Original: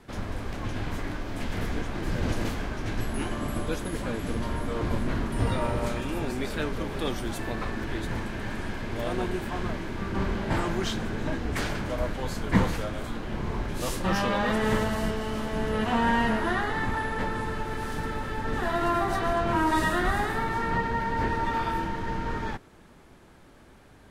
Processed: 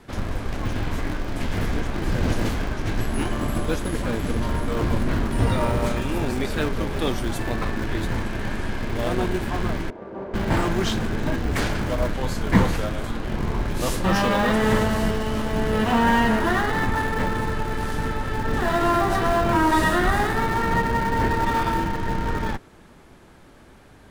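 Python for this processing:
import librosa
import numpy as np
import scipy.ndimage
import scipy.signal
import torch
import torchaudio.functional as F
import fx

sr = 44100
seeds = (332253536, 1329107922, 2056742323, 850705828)

p1 = fx.schmitt(x, sr, flips_db=-28.0)
p2 = x + (p1 * librosa.db_to_amplitude(-8.5))
p3 = fx.bandpass_q(p2, sr, hz=550.0, q=2.2, at=(9.9, 10.34))
y = p3 * librosa.db_to_amplitude(4.0)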